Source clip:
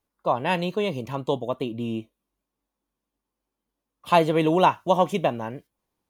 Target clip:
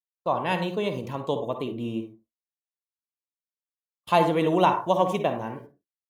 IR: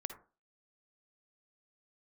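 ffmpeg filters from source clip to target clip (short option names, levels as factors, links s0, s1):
-filter_complex "[0:a]agate=range=0.0112:threshold=0.00631:ratio=16:detection=peak[s0];[1:a]atrim=start_sample=2205,afade=t=out:st=0.29:d=0.01,atrim=end_sample=13230[s1];[s0][s1]afir=irnorm=-1:irlink=0"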